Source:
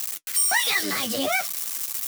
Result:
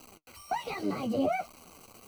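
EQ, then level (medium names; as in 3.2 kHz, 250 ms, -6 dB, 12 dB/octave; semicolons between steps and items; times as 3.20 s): boxcar filter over 25 samples; bass shelf 120 Hz +7 dB; 0.0 dB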